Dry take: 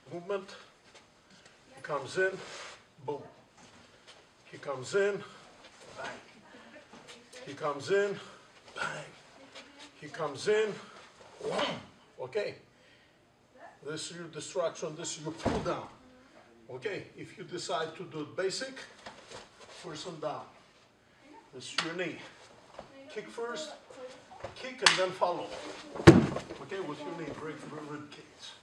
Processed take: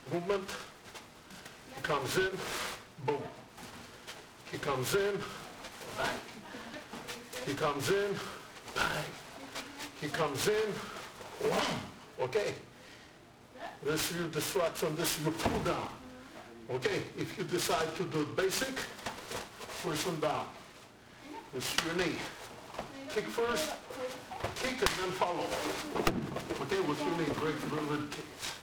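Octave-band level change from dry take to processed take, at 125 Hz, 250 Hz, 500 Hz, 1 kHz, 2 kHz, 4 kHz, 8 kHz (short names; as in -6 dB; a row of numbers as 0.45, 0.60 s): -4.5, -3.5, -0.5, +1.5, 0.0, 0.0, +2.5 dB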